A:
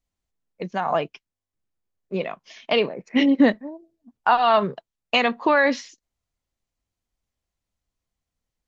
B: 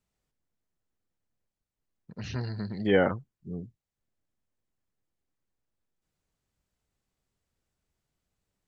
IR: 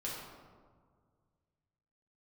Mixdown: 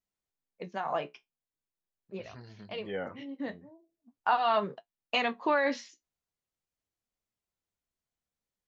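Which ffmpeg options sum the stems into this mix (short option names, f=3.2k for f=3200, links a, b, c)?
-filter_complex "[0:a]volume=-4.5dB[a];[1:a]volume=-9dB,asplit=2[b][c];[c]apad=whole_len=382438[d];[a][d]sidechaincompress=threshold=-53dB:ratio=3:attack=5.1:release=489[e];[e][b]amix=inputs=2:normalize=0,lowshelf=f=130:g=-9.5,flanger=delay=9.2:depth=5.9:regen=-53:speed=0.42:shape=sinusoidal"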